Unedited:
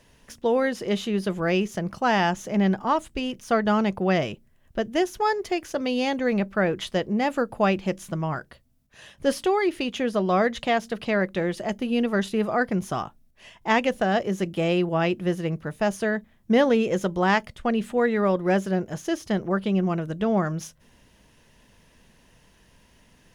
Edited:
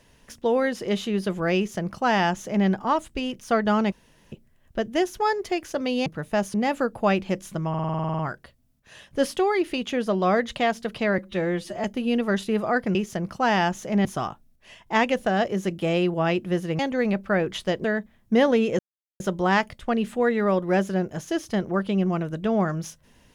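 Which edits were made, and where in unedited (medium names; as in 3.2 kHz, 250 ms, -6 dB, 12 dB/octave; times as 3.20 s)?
1.57–2.67 s: copy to 12.80 s
3.92–4.32 s: room tone
6.06–7.11 s: swap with 15.54–16.02 s
8.26 s: stutter 0.05 s, 11 plays
11.25–11.69 s: stretch 1.5×
16.97 s: insert silence 0.41 s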